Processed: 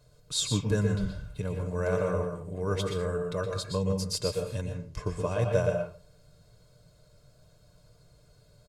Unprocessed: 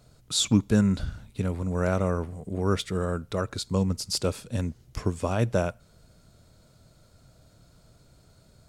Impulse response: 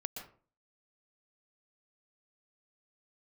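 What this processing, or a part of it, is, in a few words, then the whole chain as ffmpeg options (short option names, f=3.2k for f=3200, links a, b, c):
microphone above a desk: -filter_complex "[0:a]asettb=1/sr,asplit=3[a][b][c];[a]atrim=end=4.614[d];[b]atrim=start=4.61:end=5.49,asetpts=PTS-STARTPTS,afade=t=in:d=0.004:c=qsin,afade=t=out:st=0.876:d=0.004:c=qsin,lowpass=11k[e];[c]atrim=start=5.486[f];[d][e]acrossfade=d=0.004:c1=hsin:c2=qsin[g];[g][f]acrossfade=d=0.004:c1=qsin:c2=hsin,aecho=1:1:1.9:0.58[h];[1:a]atrim=start_sample=2205[i];[h][i]afir=irnorm=-1:irlink=0,aecho=1:1:6.7:0.36,volume=-3.5dB"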